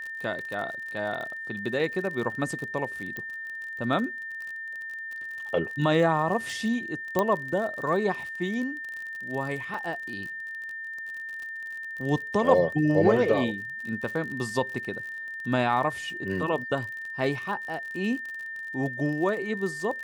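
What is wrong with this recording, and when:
surface crackle 43 per second −34 dBFS
whistle 1,800 Hz −34 dBFS
0:03.17: click −21 dBFS
0:07.19: click −11 dBFS
0:09.74: drop-out 3.3 ms

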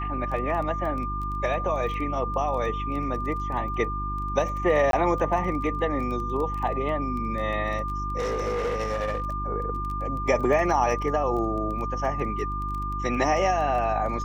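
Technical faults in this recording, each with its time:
surface crackle 16 per second −32 dBFS
mains hum 50 Hz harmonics 7 −32 dBFS
whistle 1,200 Hz −30 dBFS
0:04.91–0:04.93: drop-out 22 ms
0:08.18–0:09.24: clipping −23.5 dBFS

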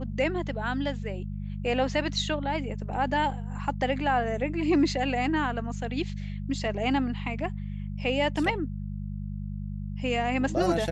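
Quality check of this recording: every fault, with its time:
mains hum 50 Hz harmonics 4 −34 dBFS

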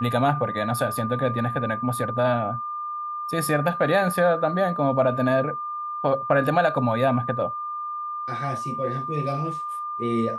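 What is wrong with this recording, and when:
whistle 1,200 Hz −28 dBFS

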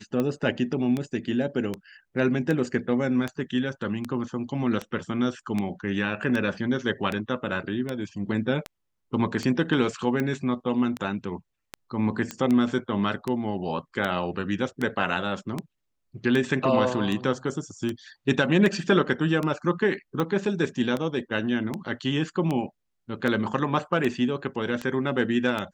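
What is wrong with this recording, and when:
scratch tick 78 rpm −15 dBFS
0:12.31: click −16 dBFS

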